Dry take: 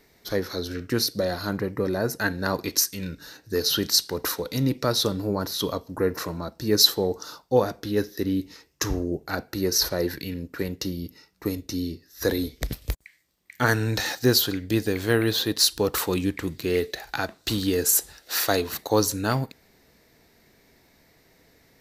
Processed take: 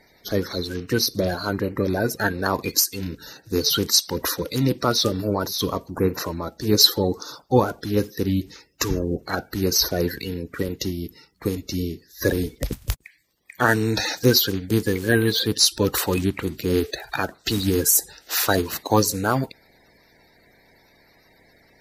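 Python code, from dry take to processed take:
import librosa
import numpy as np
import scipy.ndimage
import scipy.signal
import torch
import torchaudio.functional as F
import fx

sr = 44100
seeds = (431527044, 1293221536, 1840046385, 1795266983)

y = fx.spec_quant(x, sr, step_db=30)
y = y * 10.0 ** (3.5 / 20.0)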